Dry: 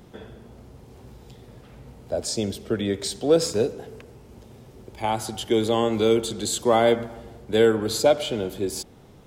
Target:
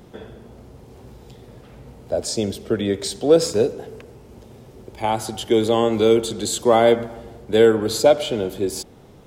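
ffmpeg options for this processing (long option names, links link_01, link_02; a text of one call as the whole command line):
ffmpeg -i in.wav -af "equalizer=frequency=480:width_type=o:width=1.6:gain=2.5,volume=2dB" out.wav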